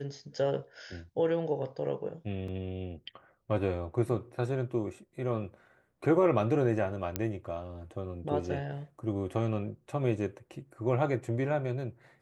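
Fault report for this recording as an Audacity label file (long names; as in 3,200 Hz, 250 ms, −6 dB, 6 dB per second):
2.480000	2.480000	drop-out 3.5 ms
7.160000	7.160000	click −14 dBFS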